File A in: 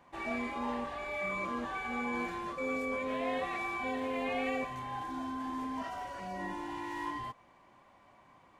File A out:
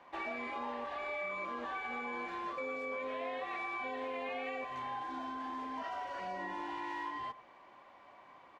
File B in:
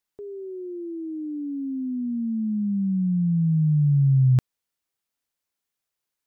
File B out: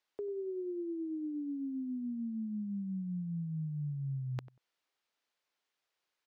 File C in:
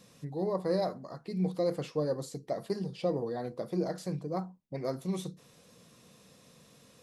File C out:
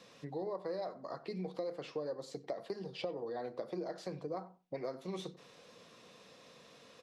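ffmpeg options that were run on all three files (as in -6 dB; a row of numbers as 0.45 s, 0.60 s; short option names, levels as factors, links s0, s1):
-filter_complex "[0:a]acrossover=split=310 5500:gain=0.224 1 0.141[s0][s1][s2];[s0][s1][s2]amix=inputs=3:normalize=0,acompressor=threshold=0.00891:ratio=6,asplit=2[s3][s4];[s4]adelay=94,lowpass=f=1500:p=1,volume=0.158,asplit=2[s5][s6];[s6]adelay=94,lowpass=f=1500:p=1,volume=0.17[s7];[s3][s5][s7]amix=inputs=3:normalize=0,volume=1.58"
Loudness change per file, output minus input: -3.0 LU, -15.0 LU, -7.5 LU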